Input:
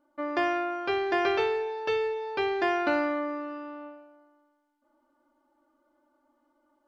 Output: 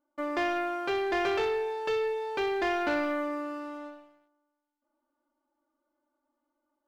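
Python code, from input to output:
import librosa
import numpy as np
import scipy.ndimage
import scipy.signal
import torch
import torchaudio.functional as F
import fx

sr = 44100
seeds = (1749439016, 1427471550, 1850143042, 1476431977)

y = fx.leveller(x, sr, passes=2)
y = y * 10.0 ** (-7.0 / 20.0)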